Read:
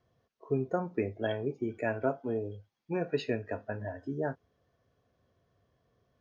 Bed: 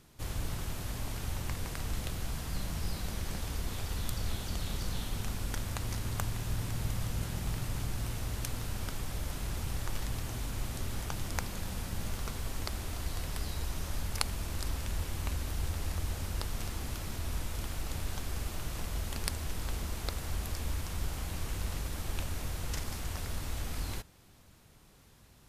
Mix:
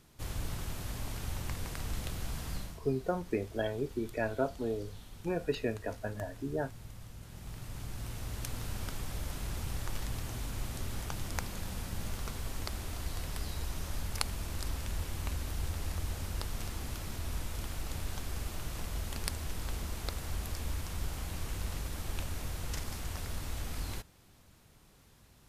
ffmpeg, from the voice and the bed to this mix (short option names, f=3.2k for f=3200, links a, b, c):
-filter_complex "[0:a]adelay=2350,volume=-1.5dB[a];[1:a]volume=11dB,afade=t=out:st=2.51:d=0.28:silence=0.237137,afade=t=in:st=7.22:d=1.45:silence=0.237137[b];[a][b]amix=inputs=2:normalize=0"